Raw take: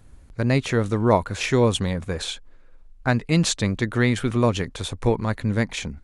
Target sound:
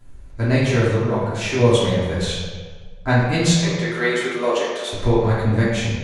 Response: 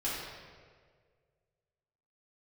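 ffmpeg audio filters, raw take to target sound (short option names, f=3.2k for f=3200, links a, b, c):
-filter_complex "[0:a]asettb=1/sr,asplit=3[a][b][c];[a]atrim=end=0.964[d];[b]atrim=start=0.96:end=1.59,asetpts=PTS-STARTPTS,afade=t=in:d=0.004:c=qsin,afade=t=out:st=0.626:d=0.004:c=qsin,acompressor=threshold=-24dB:ratio=4[e];[c]atrim=start=1.586[f];[d][e]acrossfade=d=0.004:c1=hsin:c2=qsin[g];[g][f]acrossfade=d=0.004:c1=qsin:c2=hsin,asettb=1/sr,asplit=3[h][i][j];[h]atrim=end=3.464[k];[i]atrim=start=3.46:end=4.93,asetpts=PTS-STARTPTS,afade=t=in:d=0.004:c=qsin,afade=t=out:st=1.466:d=0.004:c=qsin,highpass=f=350:w=0.5412,highpass=f=350:w=1.3066[l];[j]atrim=start=4.926[m];[k][l]acrossfade=d=0.004:c1=hsin:c2=qsin[n];[n][m]acrossfade=d=0.004:c1=qsin:c2=hsin[o];[1:a]atrim=start_sample=2205,asetrate=52920,aresample=44100[p];[o][p]afir=irnorm=-1:irlink=0"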